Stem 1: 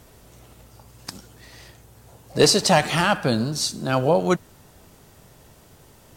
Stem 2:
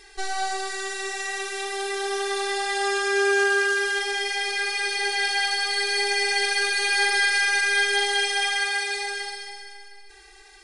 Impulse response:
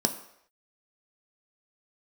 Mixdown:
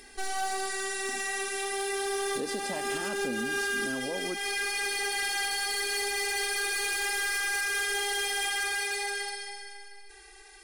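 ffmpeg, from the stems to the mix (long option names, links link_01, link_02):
-filter_complex "[0:a]equalizer=frequency=290:width=0.85:gain=10.5,volume=-18dB[link_01];[1:a]asoftclip=type=hard:threshold=-25.5dB,volume=-2.5dB[link_02];[link_01][link_02]amix=inputs=2:normalize=0,acompressor=mode=upward:threshold=-57dB:ratio=2.5,equalizer=frequency=100:width_type=o:width=0.33:gain=-10,equalizer=frequency=160:width_type=o:width=0.33:gain=-11,equalizer=frequency=250:width_type=o:width=0.33:gain=7,equalizer=frequency=500:width_type=o:width=0.33:gain=3,equalizer=frequency=4000:width_type=o:width=0.33:gain=-3,equalizer=frequency=10000:width_type=o:width=0.33:gain=9,alimiter=limit=-24dB:level=0:latency=1:release=145"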